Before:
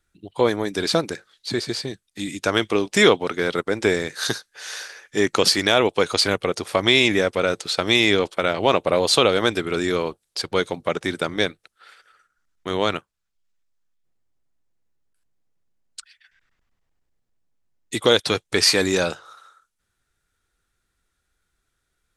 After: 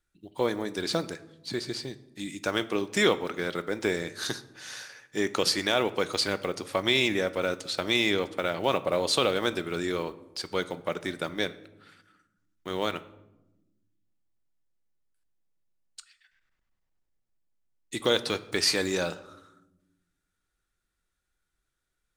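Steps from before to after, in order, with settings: block floating point 7-bit; reverb RT60 0.95 s, pre-delay 3 ms, DRR 11.5 dB; gain -8 dB

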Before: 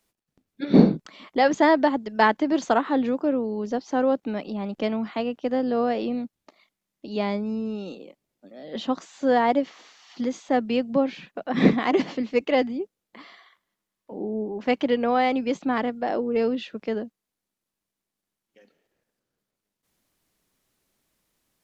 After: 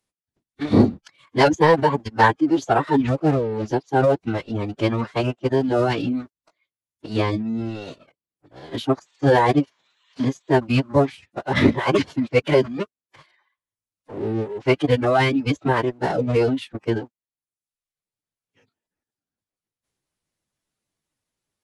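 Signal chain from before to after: sample leveller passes 2; reverb removal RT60 0.77 s; formant-preserving pitch shift -11.5 st; gain -1.5 dB

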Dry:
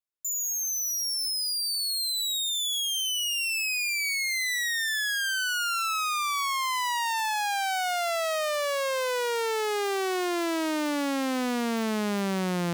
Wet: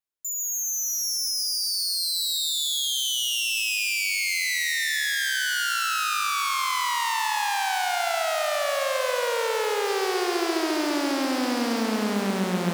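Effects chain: 9.88–11.82 bell 4900 Hz +7.5 dB 0.36 oct; analogue delay 0.208 s, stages 4096, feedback 50%, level -20 dB; lo-fi delay 0.136 s, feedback 80%, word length 9-bit, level -5 dB

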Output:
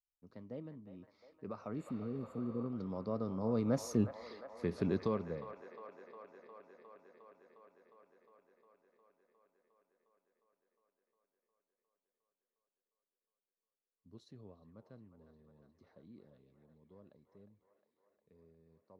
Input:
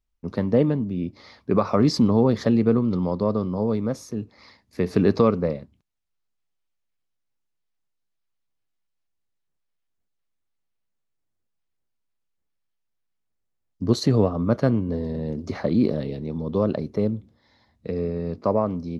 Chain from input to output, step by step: Doppler pass-by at 3.99, 15 m/s, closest 2.8 m; spectral repair 1.81–2.63, 490–6800 Hz both; band-limited delay 0.357 s, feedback 77%, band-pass 1200 Hz, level -8 dB; gain -1.5 dB

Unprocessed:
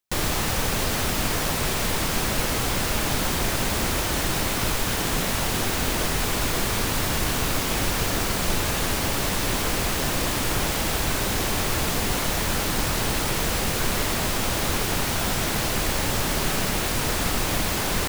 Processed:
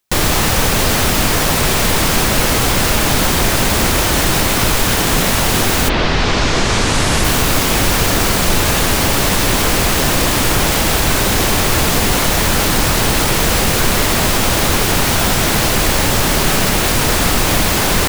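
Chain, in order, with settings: 5.88–7.23 LPF 4100 Hz -> 11000 Hz 24 dB/oct; in parallel at -1 dB: limiter -18.5 dBFS, peak gain reduction 8 dB; on the sum: gain +6.5 dB

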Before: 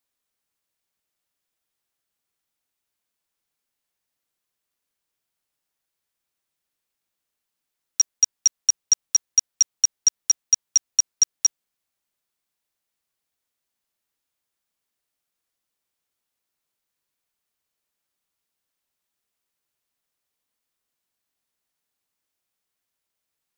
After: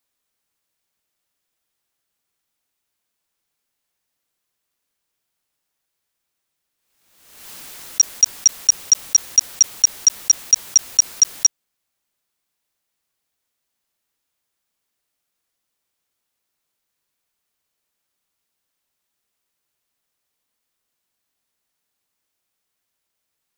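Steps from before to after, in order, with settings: backwards sustainer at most 55 dB/s; gain +4.5 dB

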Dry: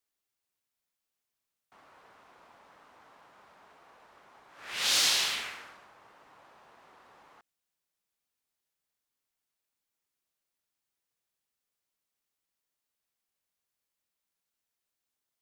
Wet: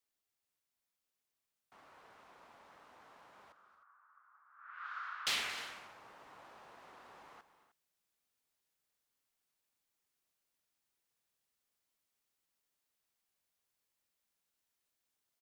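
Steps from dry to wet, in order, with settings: vocal rider 2 s; 3.52–5.27 Butterworth band-pass 1300 Hz, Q 3.3; tapped delay 0.226/0.263/0.308 s -15/-19.5/-17 dB

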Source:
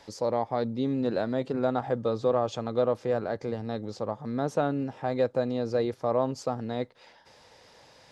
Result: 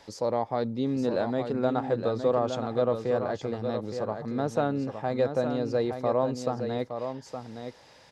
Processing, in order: echo 0.866 s -7.5 dB

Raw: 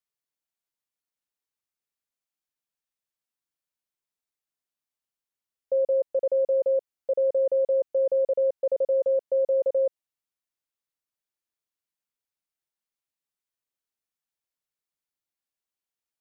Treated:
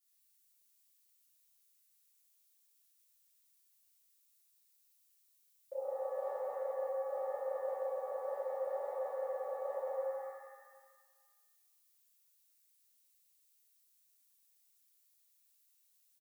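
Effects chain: differentiator; notches 60/120/180/240/300/360/420/480/540 Hz; doubler 25 ms -14 dB; shimmer reverb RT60 1.5 s, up +7 st, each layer -8 dB, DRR -11.5 dB; gain +4.5 dB

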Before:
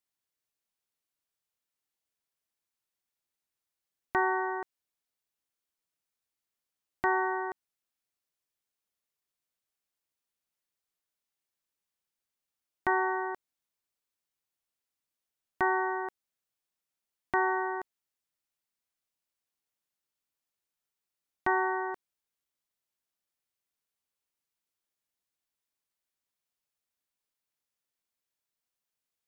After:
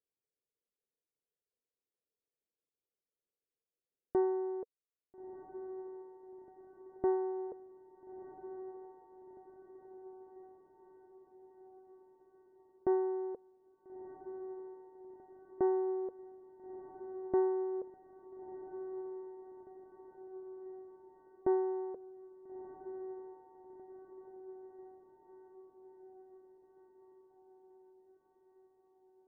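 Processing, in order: reverb removal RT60 0.63 s; synth low-pass 460 Hz, resonance Q 4.9; diffused feedback echo 1.342 s, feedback 60%, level -11 dB; gain -4.5 dB

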